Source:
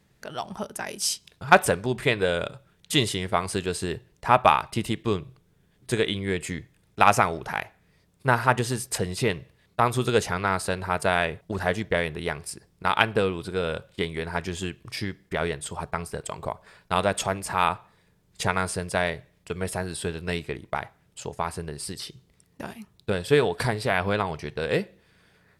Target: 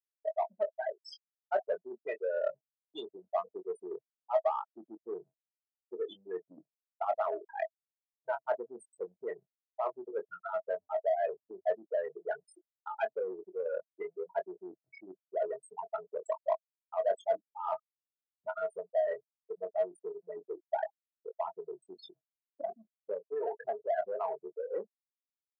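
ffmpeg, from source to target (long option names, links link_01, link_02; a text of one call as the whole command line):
ffmpeg -i in.wav -filter_complex "[0:a]asoftclip=type=hard:threshold=-6dB,areverse,acompressor=threshold=-36dB:ratio=5,areverse,afftfilt=real='re*gte(hypot(re,im),0.0501)':imag='im*gte(hypot(re,im),0.0501)':win_size=1024:overlap=0.75,equalizer=frequency=650:width=4.8:gain=14.5,asplit=2[link_01][link_02];[link_02]adelay=22,volume=-8dB[link_03];[link_01][link_03]amix=inputs=2:normalize=0,asplit=2[link_04][link_05];[link_05]asoftclip=type=tanh:threshold=-34dB,volume=-4dB[link_06];[link_04][link_06]amix=inputs=2:normalize=0,highpass=frequency=400:width=0.5412,highpass=frequency=400:width=1.3066,aemphasis=mode=reproduction:type=75kf" out.wav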